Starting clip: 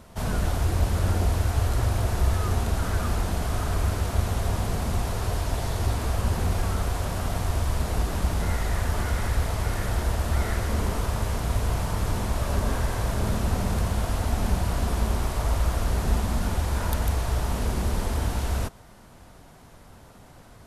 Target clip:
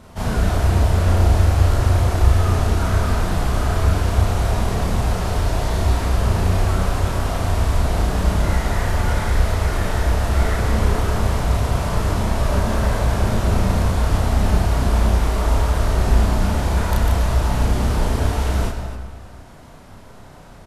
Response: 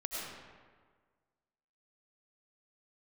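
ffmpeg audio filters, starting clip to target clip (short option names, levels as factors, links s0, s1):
-filter_complex "[0:a]highshelf=f=8300:g=-7,aecho=1:1:32.07|279.9:1|0.282,asplit=2[s0][s1];[1:a]atrim=start_sample=2205[s2];[s1][s2]afir=irnorm=-1:irlink=0,volume=0.596[s3];[s0][s3]amix=inputs=2:normalize=0"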